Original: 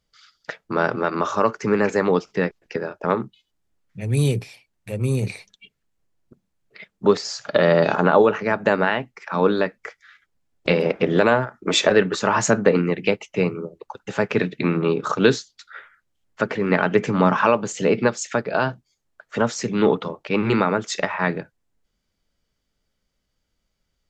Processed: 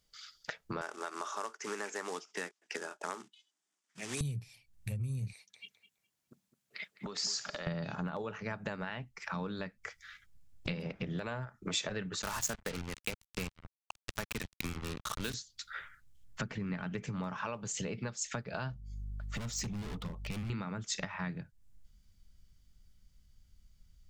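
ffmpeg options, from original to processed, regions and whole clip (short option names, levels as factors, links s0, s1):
-filter_complex "[0:a]asettb=1/sr,asplit=3[s0][s1][s2];[s0]atrim=end=0.814[s3];[s1]atrim=start=0.81:end=4.21,asetpts=PTS-STARTPTS,afade=t=in:d=0.004:c=qsin,afade=t=out:st=3.396:d=0.004:c=qsin,acrusher=bits=4:mode=log:mix=0:aa=0.000001,highpass=f=340:w=0.5412,highpass=f=340:w=1.3066,equalizer=f=520:t=q:w=4:g=-8,equalizer=f=2400:t=q:w=4:g=-3,equalizer=f=4200:t=q:w=4:g=-6,lowpass=f=8300:w=0.5412,lowpass=f=8300:w=1.3066[s4];[s2]atrim=start=4.206[s5];[s3][s4]acrossfade=d=0.004:c1=hsin:c2=qsin[s6];[s6][s5]acrossfade=d=0.004:c1=qsin:c2=hsin,asettb=1/sr,asplit=3[s7][s8][s9];[s7]atrim=end=5.334[s10];[s8]atrim=start=5.33:end=7.67,asetpts=PTS-STARTPTS,afade=t=in:d=0.004:c=qsin,afade=t=out:st=2.336:d=0.004:c=qsin,highpass=400,acompressor=threshold=0.0316:ratio=5:attack=3.2:release=140:knee=1:detection=peak,asplit=2[s11][s12];[s12]adelay=208,lowpass=f=2100:p=1,volume=0.224,asplit=2[s13][s14];[s14]adelay=208,lowpass=f=2100:p=1,volume=0.26,asplit=2[s15][s16];[s16]adelay=208,lowpass=f=2100:p=1,volume=0.26[s17];[s11][s13][s15][s17]amix=inputs=4:normalize=0,atrim=end_sample=103194[s18];[s9]atrim=start=7.666[s19];[s10][s18]acrossfade=d=0.004:c1=hsin:c2=qsin[s20];[s20][s19]acrossfade=d=0.004:c1=qsin:c2=hsin,asettb=1/sr,asplit=3[s21][s22][s23];[s21]atrim=end=12.224[s24];[s22]atrim=start=12.22:end=15.34,asetpts=PTS-STARTPTS,afade=t=in:d=0.004:c=qsin,afade=t=out:st=3.116:d=0.004:c=qsin,highpass=f=500:p=1,acrusher=bits=3:mix=0:aa=0.5[s25];[s23]atrim=start=15.336[s26];[s24][s25]acrossfade=d=0.004:c1=hsin:c2=qsin[s27];[s27][s26]acrossfade=d=0.004:c1=qsin:c2=hsin,asettb=1/sr,asplit=3[s28][s29][s30];[s28]atrim=end=18.704[s31];[s29]atrim=start=18.7:end=20.5,asetpts=PTS-STARTPTS,afade=t=in:d=0.004:c=qsin,afade=t=out:st=1.796:d=0.004:c=qsin,bandreject=f=1600:w=5.4,aeval=exprs='val(0)+0.00398*(sin(2*PI*50*n/s)+sin(2*PI*2*50*n/s)/2+sin(2*PI*3*50*n/s)/3+sin(2*PI*4*50*n/s)/4+sin(2*PI*5*50*n/s)/5)':c=same,volume=20,asoftclip=hard,volume=0.0501[s32];[s30]atrim=start=20.496[s33];[s31][s32]acrossfade=d=0.004:c1=hsin:c2=qsin[s34];[s34][s33]acrossfade=d=0.004:c1=qsin:c2=hsin,asubboost=boost=11:cutoff=130,acompressor=threshold=0.02:ratio=5,highshelf=f=3800:g=10.5,volume=0.631"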